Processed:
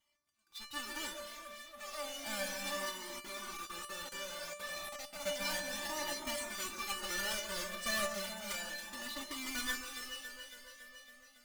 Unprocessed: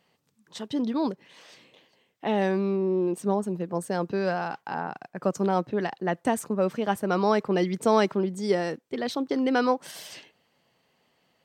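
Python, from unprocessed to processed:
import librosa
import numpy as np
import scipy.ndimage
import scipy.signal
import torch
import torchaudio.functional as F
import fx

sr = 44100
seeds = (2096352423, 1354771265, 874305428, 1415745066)

y = fx.halfwave_hold(x, sr)
y = fx.echo_alternate(y, sr, ms=139, hz=1700.0, feedback_pct=82, wet_db=-7.0)
y = fx.echo_pitch(y, sr, ms=335, semitones=6, count=3, db_per_echo=-6.0)
y = fx.tone_stack(y, sr, knobs='5-5-5')
y = y + 0.71 * np.pad(y, (int(3.4 * sr / 1000.0), 0))[:len(y)]
y = y + 10.0 ** (-18.5 / 20.0) * np.pad(y, (int(324 * sr / 1000.0), 0))[:len(y)]
y = fx.level_steps(y, sr, step_db=19, at=(2.89, 5.13))
y = fx.peak_eq(y, sr, hz=830.0, db=2.5, octaves=2.3)
y = fx.comb_fb(y, sr, f0_hz=590.0, decay_s=0.35, harmonics='all', damping=0.0, mix_pct=90)
y = fx.comb_cascade(y, sr, direction='rising', hz=0.32)
y = y * librosa.db_to_amplitude(12.0)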